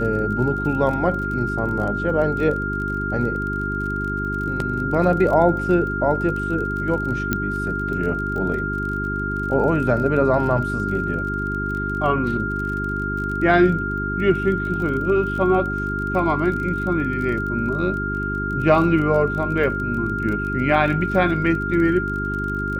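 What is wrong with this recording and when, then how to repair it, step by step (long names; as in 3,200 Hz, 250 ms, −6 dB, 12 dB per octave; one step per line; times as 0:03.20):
surface crackle 30 per second −29 dBFS
mains hum 50 Hz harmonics 8 −27 dBFS
whistle 1,400 Hz −25 dBFS
0:07.33: click −6 dBFS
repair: click removal
hum removal 50 Hz, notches 8
notch filter 1,400 Hz, Q 30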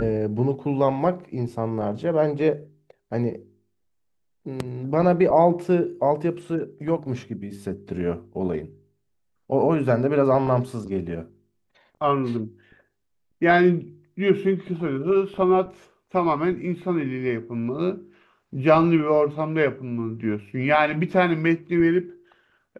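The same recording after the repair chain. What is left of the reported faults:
none of them is left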